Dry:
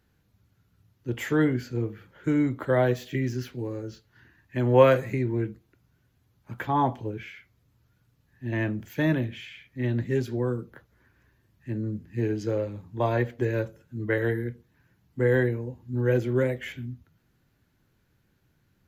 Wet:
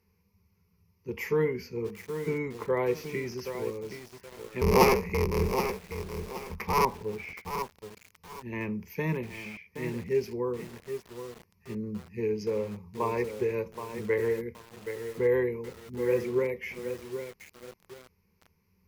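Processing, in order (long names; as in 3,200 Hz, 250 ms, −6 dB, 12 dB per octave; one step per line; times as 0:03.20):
0:04.61–0:06.85: sub-harmonics by changed cycles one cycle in 3, inverted
EQ curve with evenly spaced ripples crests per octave 0.83, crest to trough 17 dB
feedback echo at a low word length 773 ms, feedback 35%, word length 6 bits, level −8 dB
level −5.5 dB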